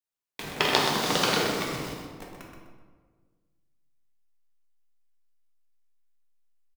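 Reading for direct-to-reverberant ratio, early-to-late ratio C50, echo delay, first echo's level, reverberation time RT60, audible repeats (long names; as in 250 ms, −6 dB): −3.0 dB, 0.5 dB, 126 ms, −7.0 dB, 1.5 s, 1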